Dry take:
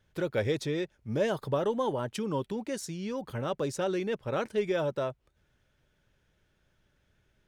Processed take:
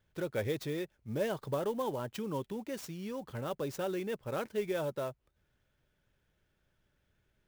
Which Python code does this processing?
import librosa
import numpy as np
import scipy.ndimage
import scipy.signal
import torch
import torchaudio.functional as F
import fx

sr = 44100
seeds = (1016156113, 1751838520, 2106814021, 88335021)

y = fx.clock_jitter(x, sr, seeds[0], jitter_ms=0.021)
y = F.gain(torch.from_numpy(y), -5.0).numpy()